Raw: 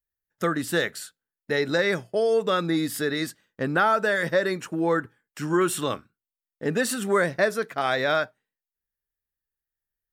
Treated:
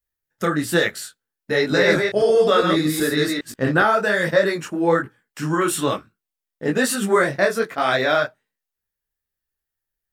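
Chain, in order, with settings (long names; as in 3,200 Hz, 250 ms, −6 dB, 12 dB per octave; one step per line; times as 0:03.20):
0:01.57–0:03.82: delay that plays each chunk backwards 130 ms, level −2.5 dB
micro pitch shift up and down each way 40 cents
level +8.5 dB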